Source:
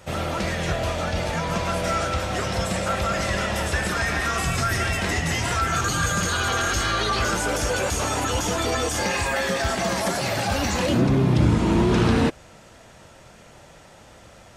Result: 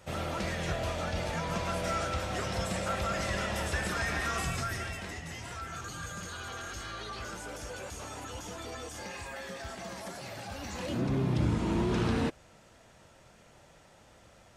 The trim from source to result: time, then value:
4.40 s -8 dB
5.20 s -17.5 dB
10.57 s -17.5 dB
11.16 s -10 dB

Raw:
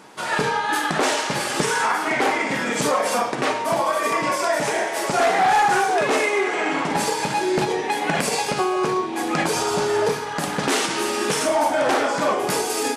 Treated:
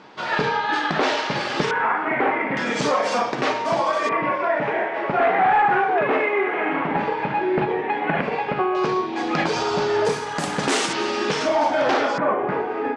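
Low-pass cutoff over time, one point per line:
low-pass 24 dB/octave
4.8 kHz
from 1.71 s 2.3 kHz
from 2.57 s 5.9 kHz
from 4.09 s 2.5 kHz
from 8.75 s 5.2 kHz
from 10.05 s 8.9 kHz
from 10.93 s 5.3 kHz
from 12.18 s 2 kHz

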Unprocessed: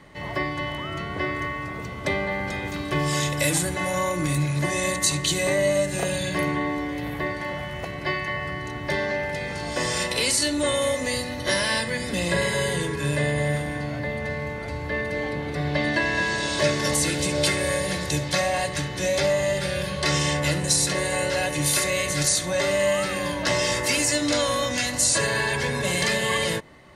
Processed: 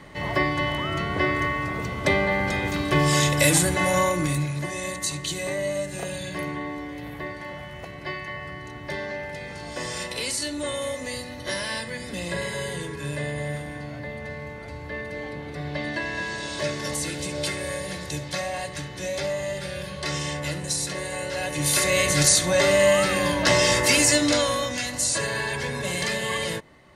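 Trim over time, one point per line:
3.99 s +4 dB
4.68 s -6 dB
21.27 s -6 dB
22.00 s +4 dB
24.13 s +4 dB
24.78 s -3.5 dB

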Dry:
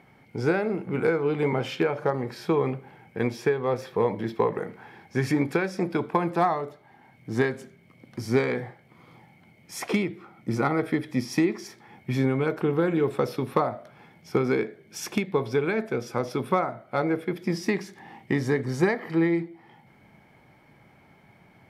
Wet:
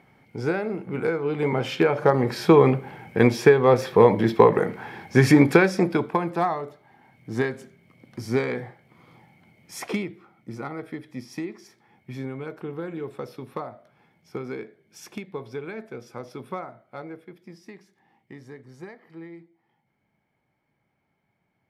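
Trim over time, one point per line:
1.22 s -1.5 dB
2.33 s +9 dB
5.62 s +9 dB
6.25 s -1 dB
9.81 s -1 dB
10.54 s -9.5 dB
16.75 s -9.5 dB
17.58 s -18.5 dB

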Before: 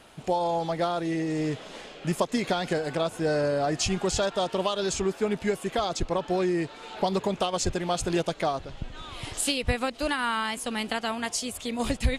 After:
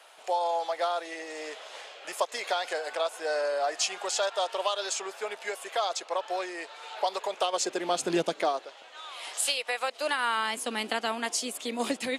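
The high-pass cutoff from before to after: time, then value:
high-pass 24 dB/octave
7.25 s 550 Hz
8.21 s 190 Hz
8.79 s 560 Hz
9.79 s 560 Hz
10.56 s 250 Hz

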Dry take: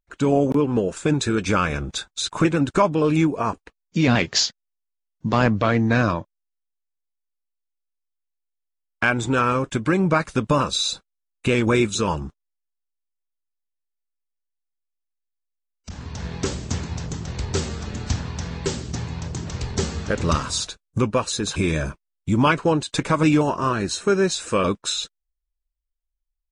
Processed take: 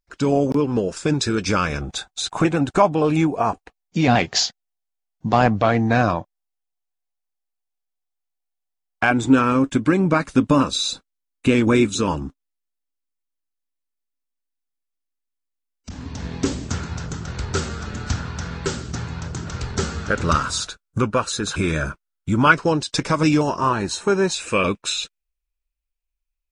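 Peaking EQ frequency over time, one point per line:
peaking EQ +11.5 dB 0.32 oct
5.1 kHz
from 1.81 s 750 Hz
from 9.11 s 270 Hz
from 16.68 s 1.4 kHz
from 22.54 s 5.3 kHz
from 23.61 s 890 Hz
from 24.34 s 2.5 kHz

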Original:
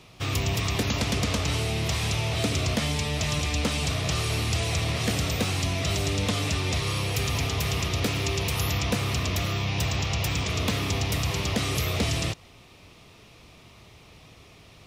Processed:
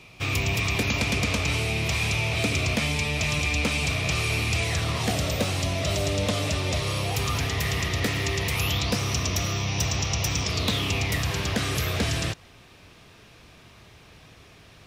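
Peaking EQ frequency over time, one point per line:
peaking EQ +11 dB 0.22 oct
4.62 s 2.4 kHz
5.20 s 590 Hz
7.01 s 590 Hz
7.49 s 1.9 kHz
8.49 s 1.9 kHz
9.00 s 5.8 kHz
10.42 s 5.8 kHz
11.27 s 1.6 kHz

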